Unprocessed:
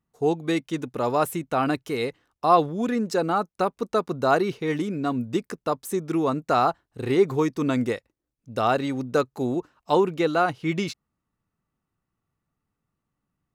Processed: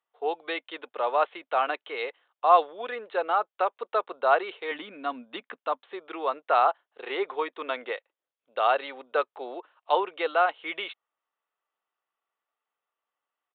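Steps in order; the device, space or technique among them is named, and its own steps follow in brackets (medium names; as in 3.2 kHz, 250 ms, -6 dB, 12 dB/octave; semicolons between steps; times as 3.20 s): 4.71–5.82 s: resonant low shelf 310 Hz +6 dB, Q 3; musical greeting card (resampled via 8 kHz; high-pass 530 Hz 24 dB/octave; peaking EQ 3.2 kHz +4 dB 0.26 oct)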